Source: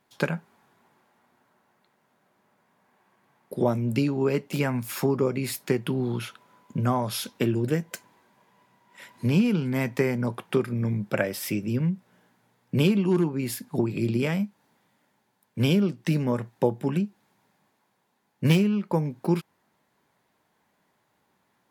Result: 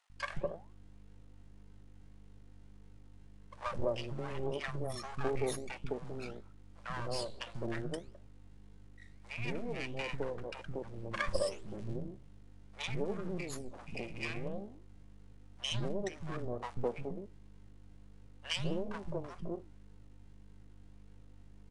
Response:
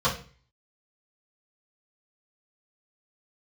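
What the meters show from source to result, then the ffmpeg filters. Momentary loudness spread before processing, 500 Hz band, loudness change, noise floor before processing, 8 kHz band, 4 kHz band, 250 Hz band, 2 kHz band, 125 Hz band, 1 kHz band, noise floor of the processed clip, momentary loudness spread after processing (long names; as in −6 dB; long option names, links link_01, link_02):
8 LU, −10.5 dB, −13.5 dB, −72 dBFS, −10.5 dB, −6.0 dB, −18.5 dB, −8.0 dB, −16.0 dB, −8.5 dB, −54 dBFS, 21 LU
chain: -filter_complex "[0:a]afftfilt=real='re*pow(10,12/40*sin(2*PI*(1.3*log(max(b,1)*sr/1024/100)/log(2)-(0.27)*(pts-256)/sr)))':imag='im*pow(10,12/40*sin(2*PI*(1.3*log(max(b,1)*sr/1024/100)/log(2)-(0.27)*(pts-256)/sr)))':win_size=1024:overlap=0.75,afftdn=noise_reduction=34:noise_floor=-32,bass=frequency=250:gain=-7,treble=frequency=4000:gain=6,aecho=1:1:1.7:0.58,aeval=exprs='val(0)+0.00631*(sin(2*PI*50*n/s)+sin(2*PI*2*50*n/s)/2+sin(2*PI*3*50*n/s)/3+sin(2*PI*4*50*n/s)/4+sin(2*PI*5*50*n/s)/5)':channel_layout=same,acrusher=bits=8:dc=4:mix=0:aa=0.000001,flanger=delay=7.7:depth=7.9:regen=85:speed=1.7:shape=sinusoidal,aeval=exprs='max(val(0),0)':channel_layout=same,acrossover=split=210|840[link_01][link_02][link_03];[link_01]adelay=140[link_04];[link_02]adelay=210[link_05];[link_04][link_05][link_03]amix=inputs=3:normalize=0,aresample=22050,aresample=44100,volume=-1.5dB"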